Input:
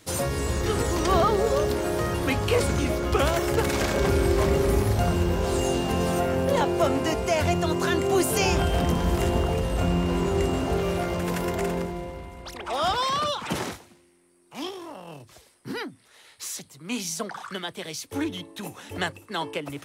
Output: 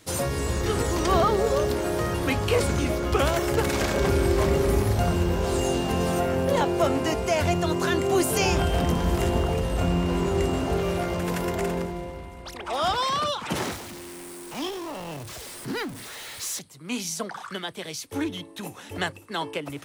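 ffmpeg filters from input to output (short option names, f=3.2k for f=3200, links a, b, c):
-filter_complex "[0:a]asettb=1/sr,asplit=3[a][b][c];[a]atrim=end=13.564[d];[b]atrim=start=13.56:end=16.59,asetpts=PTS-STARTPTS,afade=t=in:d=0.004:c=qsin,afade=t=out:st=3.026:d=0.004:c=qsin,aeval=exprs='val(0)+0.5*0.0188*sgn(val(0))':c=same[e];[c]atrim=start=16.586[f];[d][e]acrossfade=d=0.004:c1=hsin:c2=qsin[g];[g][f]acrossfade=d=0.004:c1=qsin:c2=hsin"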